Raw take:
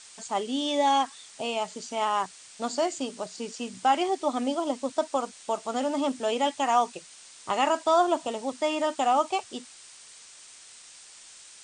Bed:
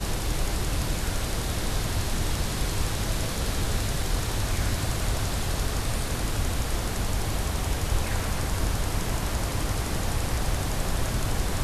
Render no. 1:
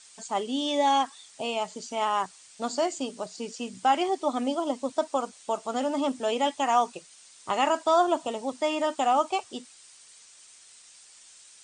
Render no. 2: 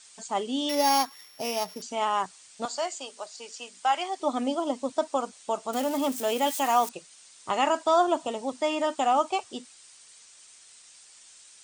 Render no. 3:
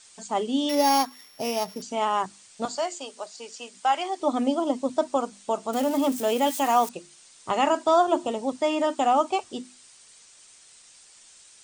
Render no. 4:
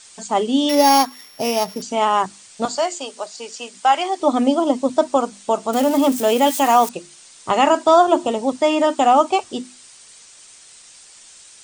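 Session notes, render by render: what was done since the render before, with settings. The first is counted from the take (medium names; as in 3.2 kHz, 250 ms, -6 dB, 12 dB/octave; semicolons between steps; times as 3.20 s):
noise reduction 6 dB, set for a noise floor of -50 dBFS
0.69–1.82 s: sorted samples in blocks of 8 samples; 2.65–4.20 s: high-pass 700 Hz; 5.73–6.89 s: zero-crossing glitches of -27.5 dBFS
bass shelf 490 Hz +7 dB; hum notches 50/100/150/200/250/300/350 Hz
trim +7.5 dB; peak limiter -3 dBFS, peak gain reduction 1.5 dB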